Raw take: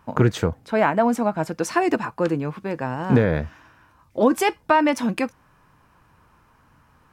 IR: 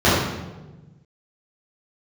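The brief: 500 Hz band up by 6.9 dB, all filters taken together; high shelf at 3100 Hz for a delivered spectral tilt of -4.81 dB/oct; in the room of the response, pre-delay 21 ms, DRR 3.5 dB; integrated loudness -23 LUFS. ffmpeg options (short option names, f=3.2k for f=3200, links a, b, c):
-filter_complex "[0:a]equalizer=f=500:t=o:g=8.5,highshelf=f=3.1k:g=4,asplit=2[a][b];[1:a]atrim=start_sample=2205,adelay=21[c];[b][c]afir=irnorm=-1:irlink=0,volume=-28.5dB[d];[a][d]amix=inputs=2:normalize=0,volume=-8.5dB"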